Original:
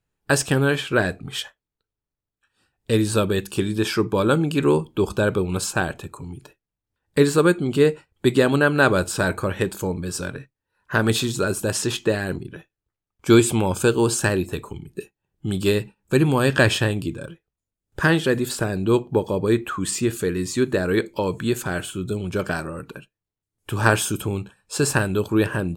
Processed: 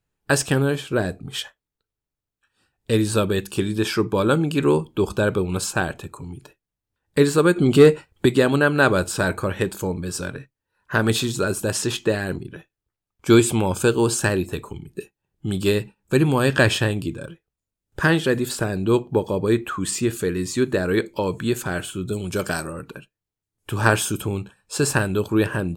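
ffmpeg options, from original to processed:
-filter_complex "[0:a]asettb=1/sr,asplit=3[s0][s1][s2];[s0]atrim=end=0.624[s3];[s1]atrim=start=0.62:end=1.34,asetpts=PTS-STARTPTS,afade=t=in:d=0.004:c=qsin,afade=t=out:st=0.716:d=0.004:c=qsin,equalizer=f=2000:t=o:w=2.1:g=-8[s4];[s2]atrim=start=1.336[s5];[s3][s4]acrossfade=d=0.004:c1=hsin:c2=qsin[s6];[s6][s5]acrossfade=d=0.004:c1=qsin:c2=hsin,asettb=1/sr,asplit=3[s7][s8][s9];[s7]atrim=end=7.564[s10];[s8]atrim=start=7.56:end=8.26,asetpts=PTS-STARTPTS,afade=t=in:d=0.004:c=qsin,afade=t=out:st=0.696:d=0.004:c=qsin,acontrast=74[s11];[s9]atrim=start=8.256[s12];[s10][s11]acrossfade=d=0.004:c1=hsin:c2=qsin[s13];[s13][s12]acrossfade=d=0.004:c1=qsin:c2=hsin,asettb=1/sr,asplit=3[s14][s15][s16];[s14]atrim=end=22.134[s17];[s15]atrim=start=22.13:end=22.73,asetpts=PTS-STARTPTS,afade=t=in:d=0.004:c=qsin,afade=t=out:st=0.596:d=0.004:c=qsin,bass=f=250:g=-1,treble=f=4000:g=10[s18];[s16]atrim=start=22.726[s19];[s17][s18]acrossfade=d=0.004:c1=hsin:c2=qsin[s20];[s20][s19]acrossfade=d=0.004:c1=qsin:c2=hsin"

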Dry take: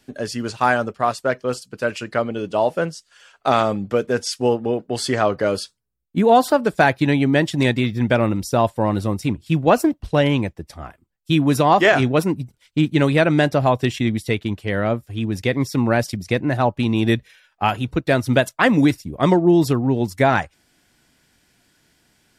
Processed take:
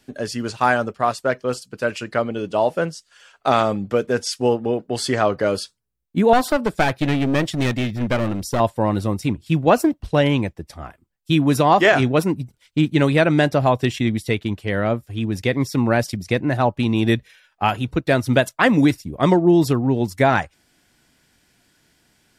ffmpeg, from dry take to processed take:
-filter_complex "[0:a]asettb=1/sr,asplit=3[s0][s1][s2];[s0]atrim=end=6.334[s3];[s1]atrim=start=6.33:end=8.6,asetpts=PTS-STARTPTS,afade=t=in:d=0.004:c=qsin,afade=t=out:st=2.266:d=0.004:c=qsin,aeval=exprs='clip(val(0),-1,0.0841)':c=same[s4];[s2]atrim=start=8.596[s5];[s3][s4]acrossfade=d=0.004:c1=hsin:c2=qsin[s6];[s6][s5]acrossfade=d=0.004:c1=qsin:c2=hsin"

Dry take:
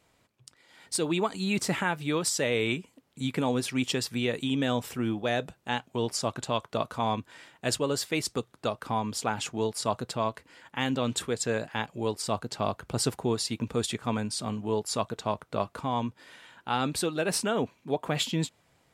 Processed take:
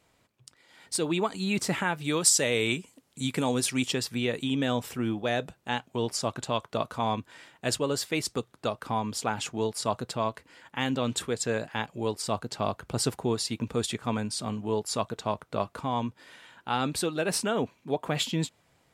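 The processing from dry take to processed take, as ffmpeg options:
-filter_complex "[0:a]asettb=1/sr,asplit=3[s0][s1][s2];[s0]atrim=end=2.044[s3];[s1]atrim=start=2.04:end=3.88,asetpts=PTS-STARTPTS,afade=t=in:d=0.004:c=qsin,afade=t=out:st=1.836:d=0.004:c=qsin,equalizer=f=8600:w=0.57:g=9[s4];[s2]atrim=start=3.876[s5];[s3][s4]acrossfade=d=0.004:c1=hsin:c2=qsin[s6];[s6][s5]acrossfade=d=0.004:c1=qsin:c2=hsin"

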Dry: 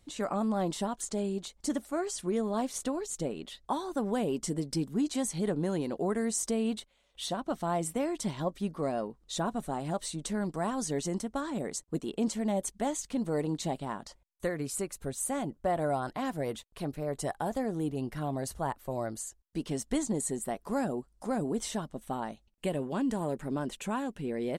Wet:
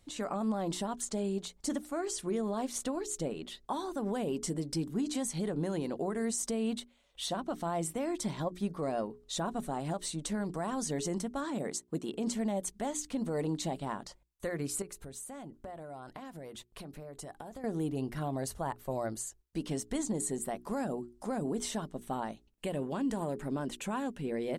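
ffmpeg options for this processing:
-filter_complex "[0:a]asettb=1/sr,asplit=3[s0][s1][s2];[s0]atrim=end=8.114[s3];[s1]atrim=start=8.11:end=8.77,asetpts=PTS-STARTPTS,afade=t=in:d=0.004:c=qsin,afade=t=out:st=0.656:d=0.004:c=qsin,bandreject=f=2900:w=12[s4];[s2]atrim=start=8.766[s5];[s3][s4]acrossfade=d=0.004:c1=hsin:c2=qsin[s6];[s6][s5]acrossfade=d=0.004:c1=qsin:c2=hsin,asettb=1/sr,asplit=3[s7][s8][s9];[s7]atrim=end=11.444[s10];[s8]atrim=start=11.44:end=12.15,asetpts=PTS-STARTPTS,afade=t=in:d=0.004:c=qsin,afade=t=out:st=0.706:d=0.004:c=qsin,highpass=84[s11];[s9]atrim=start=12.146[s12];[s10][s11]acrossfade=d=0.004:c1=hsin:c2=qsin[s13];[s13][s12]acrossfade=d=0.004:c1=qsin:c2=hsin,asettb=1/sr,asplit=3[s14][s15][s16];[s14]atrim=end=14.824[s17];[s15]atrim=start=14.82:end=17.64,asetpts=PTS-STARTPTS,afade=t=in:d=0.004:c=qsin,afade=t=out:st=2.816:d=0.004:c=qsin,acompressor=threshold=0.01:ratio=16:attack=3.2:release=140:knee=1:detection=peak[s18];[s16]atrim=start=17.636[s19];[s17][s18]acrossfade=d=0.004:c1=hsin:c2=qsin[s20];[s20][s19]acrossfade=d=0.004:c1=qsin:c2=hsin,bandreject=f=60:t=h:w=6,bandreject=f=120:t=h:w=6,bandreject=f=180:t=h:w=6,bandreject=f=240:t=h:w=6,bandreject=f=300:t=h:w=6,bandreject=f=360:t=h:w=6,bandreject=f=420:t=h:w=6,alimiter=level_in=1.06:limit=0.0631:level=0:latency=1:release=80,volume=0.944"

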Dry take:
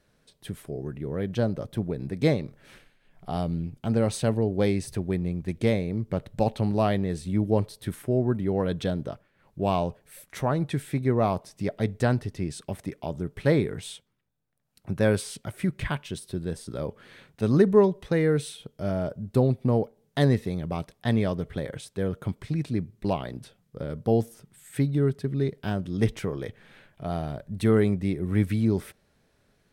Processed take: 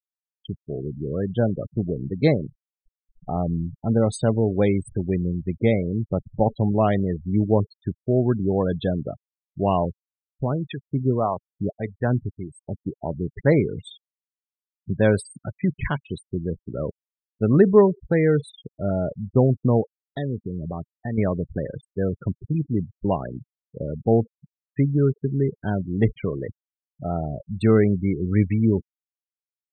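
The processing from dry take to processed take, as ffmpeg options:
-filter_complex "[0:a]asettb=1/sr,asplit=3[s0][s1][s2];[s0]atrim=end=9.854[s3];[s1]atrim=start=9.85:end=12.73,asetpts=PTS-STARTPTS,afade=t=in:d=0.004:c=qsin,afade=t=out:st=2.876:d=0.004:c=qsin,acrossover=split=520[s4][s5];[s4]aeval=exprs='val(0)*(1-0.7/2+0.7/2*cos(2*PI*1.7*n/s))':c=same[s6];[s5]aeval=exprs='val(0)*(1-0.7/2-0.7/2*cos(2*PI*1.7*n/s))':c=same[s7];[s6][s7]amix=inputs=2:normalize=0[s8];[s2]atrim=start=12.726[s9];[s3][s8]acrossfade=d=0.004:c1=hsin:c2=qsin[s10];[s10][s9]acrossfade=d=0.004:c1=qsin:c2=hsin,asettb=1/sr,asplit=3[s11][s12][s13];[s11]atrim=end=19.814[s14];[s12]atrim=start=19.81:end=21.18,asetpts=PTS-STARTPTS,afade=t=in:d=0.004:c=qsin,afade=t=out:st=1.366:d=0.004:c=qsin,acompressor=threshold=0.0282:ratio=2.5:attack=3.2:release=140:knee=1:detection=peak[s15];[s13]atrim=start=21.176[s16];[s14][s15]acrossfade=d=0.004:c1=hsin:c2=qsin[s17];[s17][s16]acrossfade=d=0.004:c1=qsin:c2=hsin,afftfilt=real='re*gte(hypot(re,im),0.0316)':imag='im*gte(hypot(re,im),0.0316)':win_size=1024:overlap=0.75,volume=1.58"

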